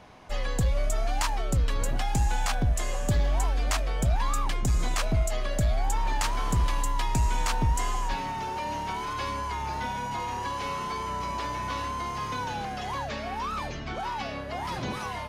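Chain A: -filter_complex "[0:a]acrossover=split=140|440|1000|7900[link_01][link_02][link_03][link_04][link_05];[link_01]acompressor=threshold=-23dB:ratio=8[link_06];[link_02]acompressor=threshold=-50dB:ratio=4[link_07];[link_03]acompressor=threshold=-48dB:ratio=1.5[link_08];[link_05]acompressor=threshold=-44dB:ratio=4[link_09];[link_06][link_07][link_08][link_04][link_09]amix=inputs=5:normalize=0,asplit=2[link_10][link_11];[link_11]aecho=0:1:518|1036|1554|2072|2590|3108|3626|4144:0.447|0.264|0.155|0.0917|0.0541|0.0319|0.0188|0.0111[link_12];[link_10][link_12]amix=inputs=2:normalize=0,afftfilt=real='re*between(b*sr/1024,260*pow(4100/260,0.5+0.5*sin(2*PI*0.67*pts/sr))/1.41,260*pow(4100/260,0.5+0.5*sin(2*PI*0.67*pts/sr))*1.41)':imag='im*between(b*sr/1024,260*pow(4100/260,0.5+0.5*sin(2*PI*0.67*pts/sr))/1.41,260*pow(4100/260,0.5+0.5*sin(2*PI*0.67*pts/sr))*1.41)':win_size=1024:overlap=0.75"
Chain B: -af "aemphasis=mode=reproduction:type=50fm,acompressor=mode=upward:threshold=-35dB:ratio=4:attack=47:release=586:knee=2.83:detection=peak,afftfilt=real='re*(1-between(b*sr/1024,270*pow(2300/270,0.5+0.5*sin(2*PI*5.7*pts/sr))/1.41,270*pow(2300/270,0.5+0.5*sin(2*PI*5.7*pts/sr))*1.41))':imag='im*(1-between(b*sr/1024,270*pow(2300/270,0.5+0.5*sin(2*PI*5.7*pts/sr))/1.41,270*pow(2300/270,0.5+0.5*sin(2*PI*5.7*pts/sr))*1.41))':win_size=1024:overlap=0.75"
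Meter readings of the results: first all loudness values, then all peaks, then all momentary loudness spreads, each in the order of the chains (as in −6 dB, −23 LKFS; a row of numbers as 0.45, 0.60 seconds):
−41.0, −30.5 LKFS; −21.5, −5.0 dBFS; 12, 7 LU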